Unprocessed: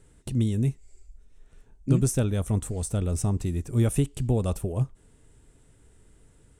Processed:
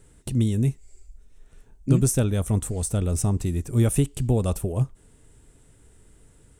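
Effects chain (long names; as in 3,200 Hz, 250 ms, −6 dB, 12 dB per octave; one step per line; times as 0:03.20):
high-shelf EQ 10,000 Hz +6.5 dB
level +2.5 dB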